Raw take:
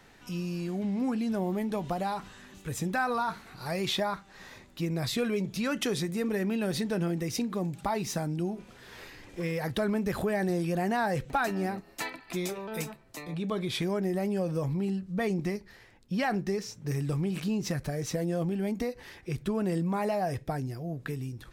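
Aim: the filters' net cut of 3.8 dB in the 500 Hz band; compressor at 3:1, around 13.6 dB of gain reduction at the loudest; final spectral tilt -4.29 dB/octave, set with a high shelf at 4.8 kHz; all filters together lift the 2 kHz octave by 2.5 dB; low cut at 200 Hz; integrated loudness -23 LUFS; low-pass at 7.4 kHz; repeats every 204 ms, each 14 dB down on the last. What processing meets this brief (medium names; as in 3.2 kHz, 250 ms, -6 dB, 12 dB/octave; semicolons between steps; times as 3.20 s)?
high-pass 200 Hz; low-pass 7.4 kHz; peaking EQ 500 Hz -5 dB; peaking EQ 2 kHz +4.5 dB; treble shelf 4.8 kHz -6 dB; compression 3:1, threshold -43 dBFS; feedback delay 204 ms, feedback 20%, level -14 dB; trim +20.5 dB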